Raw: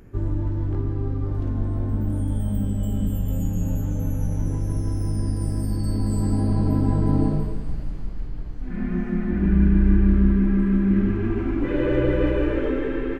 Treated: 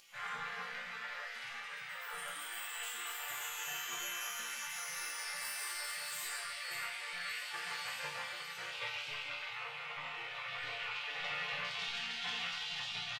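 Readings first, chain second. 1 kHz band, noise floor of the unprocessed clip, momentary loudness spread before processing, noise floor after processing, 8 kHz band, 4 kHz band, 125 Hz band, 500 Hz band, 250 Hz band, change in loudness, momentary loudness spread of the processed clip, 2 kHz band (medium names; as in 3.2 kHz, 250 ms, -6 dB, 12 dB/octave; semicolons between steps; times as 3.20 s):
-4.5 dB, -29 dBFS, 9 LU, -46 dBFS, +4.0 dB, no reading, under -40 dB, -25.5 dB, under -40 dB, -16.0 dB, 5 LU, +1.5 dB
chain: comb 3 ms, depth 66%; peak limiter -10 dBFS, peak gain reduction 5 dB; thinning echo 575 ms, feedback 50%, high-pass 310 Hz, level -11 dB; gain riding within 5 dB 0.5 s; overdrive pedal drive 27 dB, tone 2.1 kHz, clips at -7.5 dBFS; spectral gate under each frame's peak -30 dB weak; chord resonator A#2 major, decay 0.58 s; trim +16.5 dB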